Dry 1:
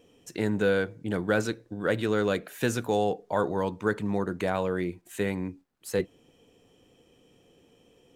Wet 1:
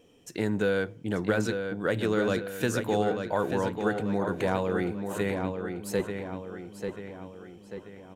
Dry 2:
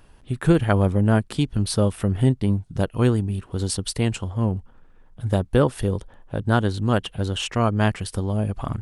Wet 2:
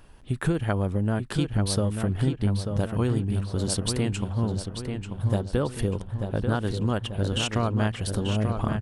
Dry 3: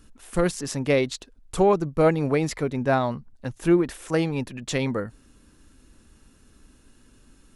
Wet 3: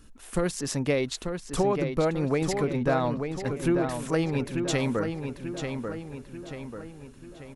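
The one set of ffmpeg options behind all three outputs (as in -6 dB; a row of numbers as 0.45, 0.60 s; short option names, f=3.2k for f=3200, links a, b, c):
-filter_complex "[0:a]acompressor=threshold=-21dB:ratio=6,asplit=2[a][b];[b]adelay=889,lowpass=f=4.3k:p=1,volume=-6dB,asplit=2[c][d];[d]adelay=889,lowpass=f=4.3k:p=1,volume=0.51,asplit=2[e][f];[f]adelay=889,lowpass=f=4.3k:p=1,volume=0.51,asplit=2[g][h];[h]adelay=889,lowpass=f=4.3k:p=1,volume=0.51,asplit=2[i][j];[j]adelay=889,lowpass=f=4.3k:p=1,volume=0.51,asplit=2[k][l];[l]adelay=889,lowpass=f=4.3k:p=1,volume=0.51[m];[c][e][g][i][k][m]amix=inputs=6:normalize=0[n];[a][n]amix=inputs=2:normalize=0"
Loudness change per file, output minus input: -0.5, -4.0, -4.0 LU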